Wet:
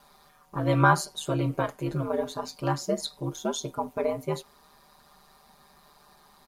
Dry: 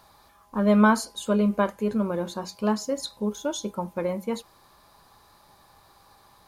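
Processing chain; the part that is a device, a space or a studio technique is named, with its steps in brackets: ring-modulated robot voice (ring modulator 75 Hz; comb 5 ms, depth 88%)

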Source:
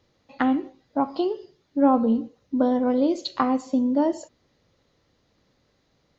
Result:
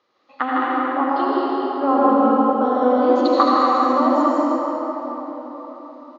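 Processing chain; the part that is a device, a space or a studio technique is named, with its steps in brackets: station announcement (band-pass 390–4600 Hz; peaking EQ 1.2 kHz +12 dB 0.37 oct; loudspeakers at several distances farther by 54 m -4 dB, 74 m -4 dB; reverberation RT60 4.6 s, pre-delay 71 ms, DRR -5 dB); trim -1 dB

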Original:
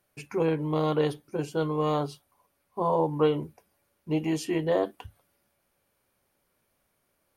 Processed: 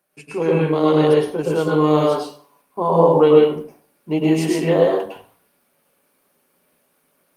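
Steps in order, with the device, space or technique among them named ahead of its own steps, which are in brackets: 2.92–3.35 s: peaking EQ 480 Hz +2.5 dB 0.72 oct; far-field microphone of a smart speaker (reverberation RT60 0.50 s, pre-delay 101 ms, DRR -2.5 dB; high-pass 160 Hz 24 dB/octave; level rider gain up to 5 dB; trim +2 dB; Opus 32 kbps 48 kHz)

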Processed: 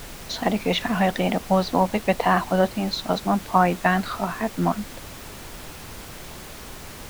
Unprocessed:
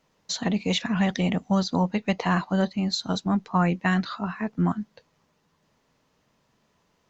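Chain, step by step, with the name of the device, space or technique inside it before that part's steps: horn gramophone (band-pass 220–3800 Hz; peaking EQ 680 Hz +7 dB; wow and flutter; pink noise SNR 14 dB); trim +3.5 dB

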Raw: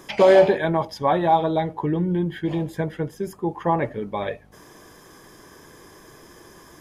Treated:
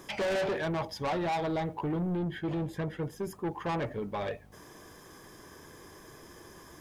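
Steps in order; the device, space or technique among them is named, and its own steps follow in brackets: open-reel tape (saturation -24 dBFS, distortion -5 dB; peaking EQ 81 Hz +3.5 dB 0.83 oct; white noise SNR 43 dB); 2.17–3.03 s: treble shelf 6.8 kHz -6 dB; trim -4 dB

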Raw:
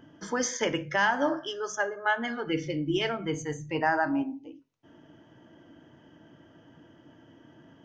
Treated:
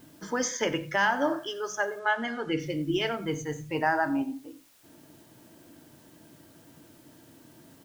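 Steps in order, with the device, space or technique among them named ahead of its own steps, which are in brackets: plain cassette with noise reduction switched in (tape noise reduction on one side only decoder only; wow and flutter 16 cents; white noise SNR 29 dB); 1.99–2.60 s: low-pass 7.5 kHz 12 dB/octave; delay 91 ms -18.5 dB

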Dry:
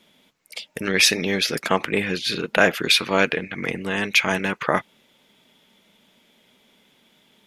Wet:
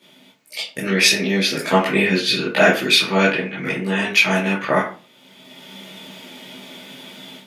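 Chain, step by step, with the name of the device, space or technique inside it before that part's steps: far laptop microphone (reverberation RT60 0.35 s, pre-delay 13 ms, DRR -9 dB; high-pass 150 Hz 12 dB/octave; level rider gain up to 11.5 dB); trim -1 dB

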